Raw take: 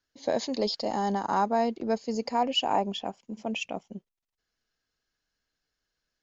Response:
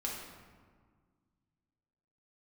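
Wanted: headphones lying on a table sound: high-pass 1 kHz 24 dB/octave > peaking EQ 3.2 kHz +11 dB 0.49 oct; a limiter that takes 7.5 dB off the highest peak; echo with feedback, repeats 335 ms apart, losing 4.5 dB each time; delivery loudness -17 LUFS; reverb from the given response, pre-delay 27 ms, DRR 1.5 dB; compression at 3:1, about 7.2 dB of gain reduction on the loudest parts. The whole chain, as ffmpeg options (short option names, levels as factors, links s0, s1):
-filter_complex "[0:a]acompressor=threshold=0.0316:ratio=3,alimiter=level_in=1.19:limit=0.0631:level=0:latency=1,volume=0.841,aecho=1:1:335|670|1005|1340|1675|2010|2345|2680|3015:0.596|0.357|0.214|0.129|0.0772|0.0463|0.0278|0.0167|0.01,asplit=2[s0][s1];[1:a]atrim=start_sample=2205,adelay=27[s2];[s1][s2]afir=irnorm=-1:irlink=0,volume=0.668[s3];[s0][s3]amix=inputs=2:normalize=0,highpass=f=1000:w=0.5412,highpass=f=1000:w=1.3066,equalizer=f=3200:t=o:w=0.49:g=11,volume=5.96"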